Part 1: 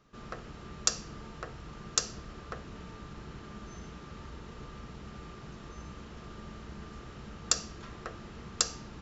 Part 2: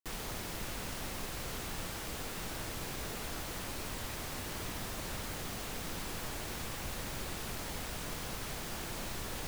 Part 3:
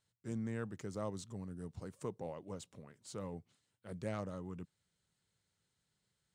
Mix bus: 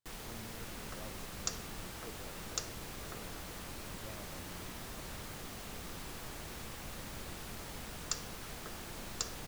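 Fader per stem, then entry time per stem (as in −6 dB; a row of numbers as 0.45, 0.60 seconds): −10.0, −5.5, −11.5 decibels; 0.60, 0.00, 0.00 seconds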